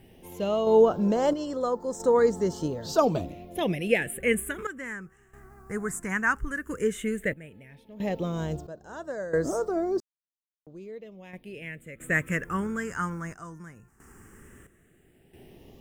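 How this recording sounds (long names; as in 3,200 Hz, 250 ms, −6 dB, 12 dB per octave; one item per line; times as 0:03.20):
a quantiser's noise floor 12 bits, dither triangular
phaser sweep stages 4, 0.13 Hz, lowest notch 550–2,500 Hz
sample-and-hold tremolo 1.5 Hz, depth 100%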